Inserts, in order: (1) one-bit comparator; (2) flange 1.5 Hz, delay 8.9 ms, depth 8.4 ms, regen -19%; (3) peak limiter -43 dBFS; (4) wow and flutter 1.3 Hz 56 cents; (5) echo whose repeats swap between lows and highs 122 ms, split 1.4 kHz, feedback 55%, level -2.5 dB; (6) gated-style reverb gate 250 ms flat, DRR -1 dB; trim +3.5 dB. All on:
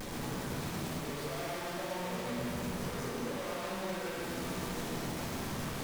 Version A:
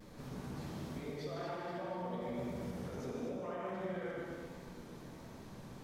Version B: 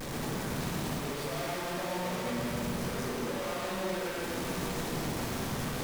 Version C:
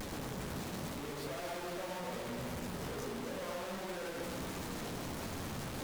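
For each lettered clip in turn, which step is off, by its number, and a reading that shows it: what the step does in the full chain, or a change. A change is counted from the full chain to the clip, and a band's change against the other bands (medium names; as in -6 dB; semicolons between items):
1, crest factor change +2.5 dB; 2, loudness change +3.5 LU; 6, echo-to-direct 3.0 dB to -4.5 dB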